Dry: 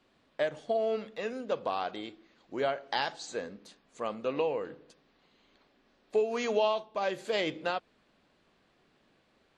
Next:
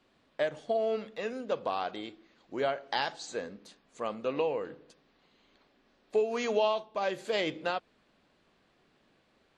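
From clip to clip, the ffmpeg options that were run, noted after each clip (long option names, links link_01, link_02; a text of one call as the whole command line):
ffmpeg -i in.wav -af anull out.wav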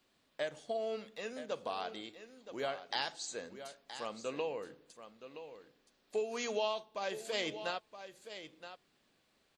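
ffmpeg -i in.wav -af "crystalizer=i=3:c=0,aecho=1:1:971:0.266,volume=-8dB" out.wav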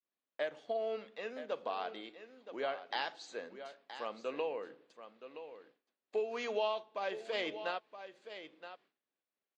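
ffmpeg -i in.wav -af "agate=range=-33dB:threshold=-60dB:ratio=3:detection=peak,highpass=270,lowpass=3100,volume=1dB" out.wav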